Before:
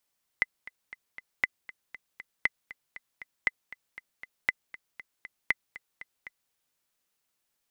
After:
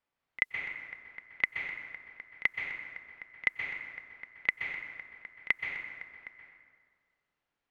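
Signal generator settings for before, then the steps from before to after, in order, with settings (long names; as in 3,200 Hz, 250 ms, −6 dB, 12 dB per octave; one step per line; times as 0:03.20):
click track 236 BPM, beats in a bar 4, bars 6, 2,030 Hz, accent 18.5 dB −10 dBFS
low-pass that shuts in the quiet parts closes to 2,300 Hz, open at −34 dBFS
echo ahead of the sound 34 ms −19 dB
dense smooth reverb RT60 1.7 s, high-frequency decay 0.6×, pre-delay 115 ms, DRR 2.5 dB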